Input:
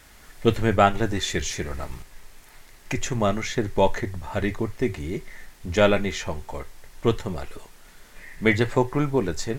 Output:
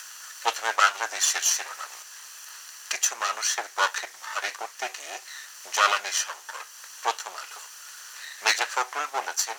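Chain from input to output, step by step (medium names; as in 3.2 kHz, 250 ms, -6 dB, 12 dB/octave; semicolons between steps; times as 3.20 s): comb filter that takes the minimum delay 0.68 ms; high-pass 710 Hz 24 dB/octave; peaking EQ 6.1 kHz +10.5 dB 0.61 oct; in parallel at +1.5 dB: upward compressor, threshold -34 dBFS; on the sum: word length cut 10-bit, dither none; trim -3.5 dB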